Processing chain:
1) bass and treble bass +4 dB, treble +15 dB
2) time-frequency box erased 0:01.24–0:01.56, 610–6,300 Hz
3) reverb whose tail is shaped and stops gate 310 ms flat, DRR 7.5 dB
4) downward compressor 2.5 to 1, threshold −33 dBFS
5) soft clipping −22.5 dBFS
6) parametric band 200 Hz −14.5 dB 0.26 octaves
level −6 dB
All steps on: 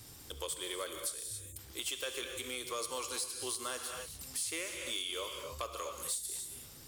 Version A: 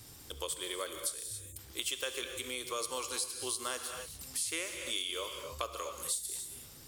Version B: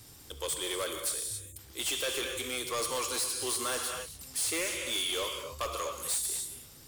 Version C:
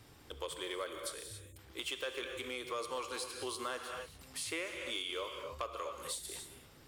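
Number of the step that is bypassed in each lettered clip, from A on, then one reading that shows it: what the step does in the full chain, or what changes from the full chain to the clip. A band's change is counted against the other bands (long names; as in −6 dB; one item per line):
5, distortion level −16 dB
4, average gain reduction 7.0 dB
1, 8 kHz band −9.0 dB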